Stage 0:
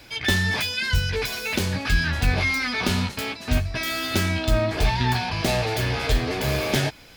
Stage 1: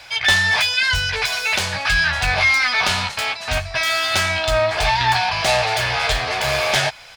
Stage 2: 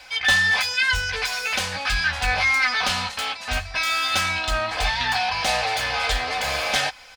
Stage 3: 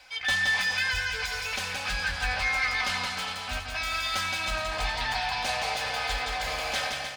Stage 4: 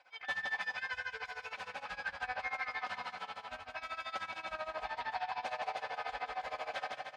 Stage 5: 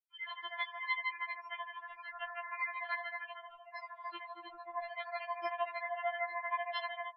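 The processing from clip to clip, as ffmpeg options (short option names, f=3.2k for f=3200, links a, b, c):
-af "firequalizer=gain_entry='entry(140,0);entry(260,-10);entry(670,13);entry(9000,10);entry(13000,1)':delay=0.05:min_phase=1,volume=-4dB"
-af "aecho=1:1:3.9:0.66,volume=-5dB"
-af "aecho=1:1:170|306|414.8|501.8|571.5:0.631|0.398|0.251|0.158|0.1,volume=-8.5dB"
-af "tremolo=f=13:d=0.87,bandpass=f=770:t=q:w=0.83:csg=0,volume=-2.5dB"
-af "afftfilt=real='re*gte(hypot(re,im),0.00891)':imag='im*gte(hypot(re,im),0.00891)':win_size=1024:overlap=0.75,tremolo=f=4.4:d=0.34,afftfilt=real='re*4*eq(mod(b,16),0)':imag='im*4*eq(mod(b,16),0)':win_size=2048:overlap=0.75,volume=8.5dB"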